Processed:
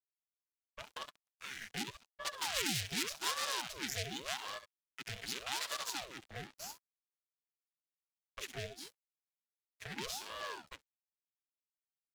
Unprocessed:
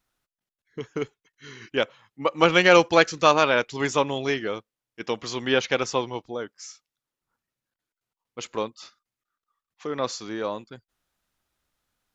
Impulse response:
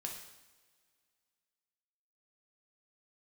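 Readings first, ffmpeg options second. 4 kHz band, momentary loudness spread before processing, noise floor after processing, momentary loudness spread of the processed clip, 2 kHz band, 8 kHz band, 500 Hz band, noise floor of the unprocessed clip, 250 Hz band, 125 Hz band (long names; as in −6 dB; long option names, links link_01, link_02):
−9.5 dB, 20 LU, below −85 dBFS, 17 LU, −16.5 dB, can't be measured, −26.5 dB, below −85 dBFS, −20.5 dB, −14.0 dB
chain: -filter_complex "[0:a]acrossover=split=180|2500[link_01][link_02][link_03];[link_03]aeval=exprs='max(val(0),0)':channel_layout=same[link_04];[link_01][link_02][link_04]amix=inputs=3:normalize=0,tiltshelf=frequency=1500:gain=4,asplit=2[link_05][link_06];[link_06]aecho=0:1:67|134|201:0.211|0.0507|0.0122[link_07];[link_05][link_07]amix=inputs=2:normalize=0,aeval=exprs='(tanh(25.1*val(0)+0.8)-tanh(0.8))/25.1':channel_layout=same,alimiter=level_in=6.5dB:limit=-24dB:level=0:latency=1:release=68,volume=-6.5dB,afftfilt=real='re*(1-between(b*sr/4096,160,530))':imag='im*(1-between(b*sr/4096,160,530))':win_size=4096:overlap=0.75,firequalizer=gain_entry='entry(110,0);entry(190,-28);entry(360,-2);entry(530,14);entry(940,-20);entry(1700,14)':delay=0.05:min_phase=1,aeval=exprs='sgn(val(0))*max(abs(val(0))-0.00376,0)':channel_layout=same,acrossover=split=160|3000[link_08][link_09][link_10];[link_09]acompressor=threshold=-46dB:ratio=5[link_11];[link_08][link_11][link_10]amix=inputs=3:normalize=0,aeval=exprs='val(0)*sin(2*PI*630*n/s+630*0.85/0.86*sin(2*PI*0.86*n/s))':channel_layout=same,volume=3dB"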